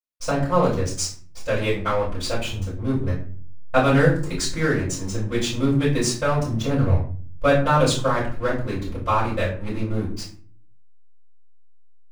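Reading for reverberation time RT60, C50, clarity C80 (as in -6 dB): 0.45 s, 6.5 dB, 11.0 dB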